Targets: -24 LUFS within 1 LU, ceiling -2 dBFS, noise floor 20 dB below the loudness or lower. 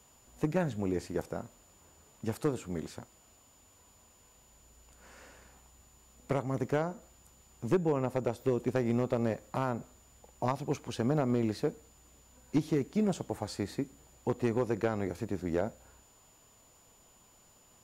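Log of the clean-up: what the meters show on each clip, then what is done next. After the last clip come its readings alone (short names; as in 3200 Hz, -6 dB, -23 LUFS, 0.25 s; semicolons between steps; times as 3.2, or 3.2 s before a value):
clipped 0.3%; flat tops at -19.5 dBFS; steady tone 7000 Hz; tone level -63 dBFS; loudness -33.5 LUFS; peak -19.5 dBFS; loudness target -24.0 LUFS
-> clip repair -19.5 dBFS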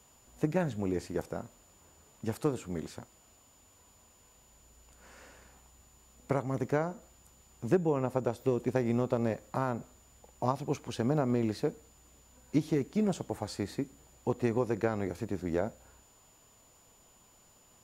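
clipped 0.0%; steady tone 7000 Hz; tone level -63 dBFS
-> notch 7000 Hz, Q 30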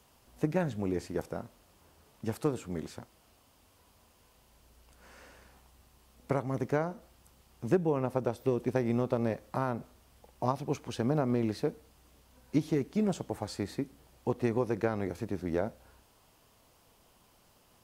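steady tone none; loudness -33.0 LUFS; peak -13.5 dBFS; loudness target -24.0 LUFS
-> gain +9 dB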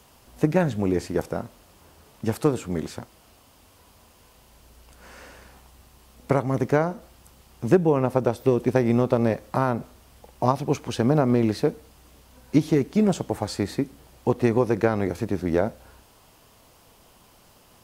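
loudness -24.0 LUFS; peak -4.5 dBFS; noise floor -56 dBFS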